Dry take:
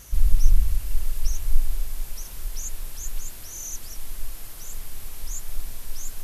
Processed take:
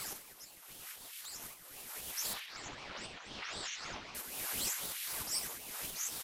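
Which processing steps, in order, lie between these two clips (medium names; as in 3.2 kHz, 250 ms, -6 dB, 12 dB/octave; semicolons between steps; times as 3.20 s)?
2.33–4.15 s: low-pass 3.9 kHz 24 dB/octave; compression 8:1, threshold -29 dBFS, peak gain reduction 22 dB; flange 0.41 Hz, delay 4.1 ms, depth 9.4 ms, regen -61%; LFO high-pass saw up 0.78 Hz 400–3000 Hz; on a send: feedback delay 64 ms, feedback 42%, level -12.5 dB; on the sum: ring modulator with a swept carrier 1 kHz, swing 80%, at 3.9 Hz; trim +13 dB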